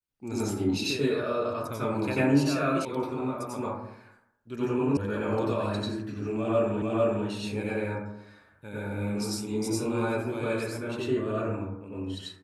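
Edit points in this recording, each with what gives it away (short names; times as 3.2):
2.85 sound cut off
4.97 sound cut off
6.82 repeat of the last 0.45 s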